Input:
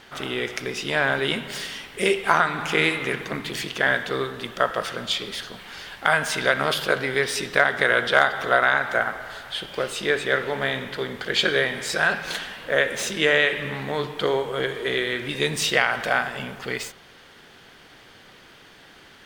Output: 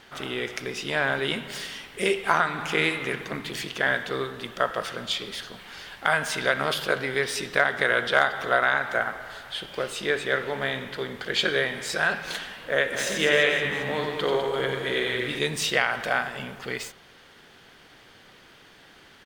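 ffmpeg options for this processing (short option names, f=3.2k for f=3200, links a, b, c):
-filter_complex "[0:a]asplit=3[a][b][c];[a]afade=t=out:st=12.92:d=0.02[d];[b]aecho=1:1:90|202.5|343.1|518.9|738.6:0.631|0.398|0.251|0.158|0.1,afade=t=in:st=12.92:d=0.02,afade=t=out:st=15.38:d=0.02[e];[c]afade=t=in:st=15.38:d=0.02[f];[d][e][f]amix=inputs=3:normalize=0,volume=-3dB"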